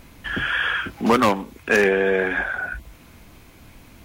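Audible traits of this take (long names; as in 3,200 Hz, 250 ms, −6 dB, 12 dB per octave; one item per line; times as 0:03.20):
background noise floor −48 dBFS
spectral slope −2.5 dB per octave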